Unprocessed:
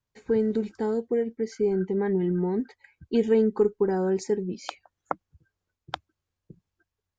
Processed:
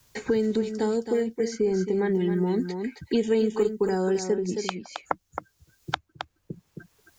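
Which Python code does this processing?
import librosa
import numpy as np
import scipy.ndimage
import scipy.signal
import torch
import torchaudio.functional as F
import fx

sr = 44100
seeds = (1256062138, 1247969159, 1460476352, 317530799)

y = fx.high_shelf(x, sr, hz=3600.0, db=11.5)
y = y + 10.0 ** (-9.5 / 20.0) * np.pad(y, (int(268 * sr / 1000.0), 0))[:len(y)]
y = fx.band_squash(y, sr, depth_pct=70)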